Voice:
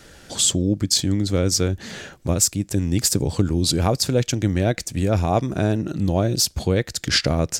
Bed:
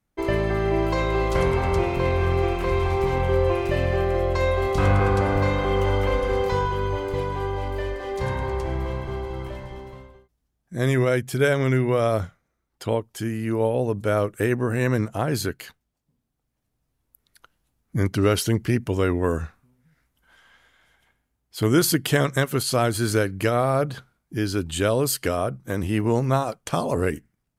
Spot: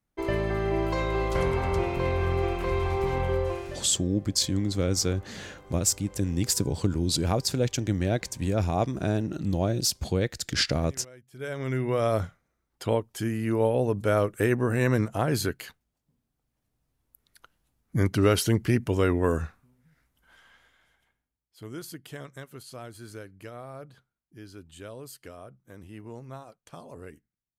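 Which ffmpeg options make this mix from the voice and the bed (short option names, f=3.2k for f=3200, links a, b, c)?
-filter_complex "[0:a]adelay=3450,volume=-6dB[a];[1:a]volume=22dB,afade=t=out:st=3.25:d=0.64:silence=0.0668344,afade=t=in:st=11.3:d=0.97:silence=0.0473151,afade=t=out:st=20.4:d=1.11:silence=0.112202[b];[a][b]amix=inputs=2:normalize=0"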